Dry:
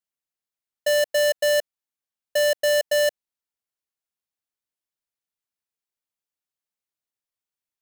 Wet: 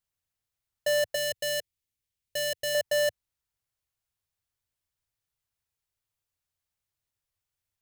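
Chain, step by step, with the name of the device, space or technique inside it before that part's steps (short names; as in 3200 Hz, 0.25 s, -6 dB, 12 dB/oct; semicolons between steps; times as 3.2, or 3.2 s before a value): car stereo with a boomy subwoofer (resonant low shelf 150 Hz +12.5 dB, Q 1.5; limiter -24.5 dBFS, peak gain reduction 7.5 dB); 1.15–2.75 band shelf 960 Hz -8.5 dB; gain +3 dB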